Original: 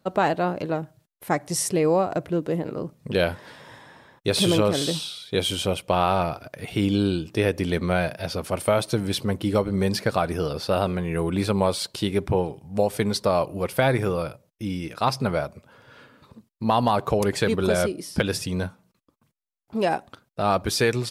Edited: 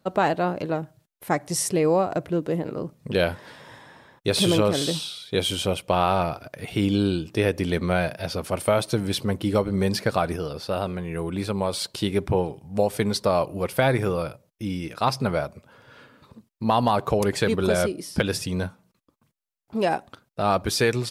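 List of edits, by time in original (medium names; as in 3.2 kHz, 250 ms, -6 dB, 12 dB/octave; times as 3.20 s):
10.36–11.73 s: gain -4 dB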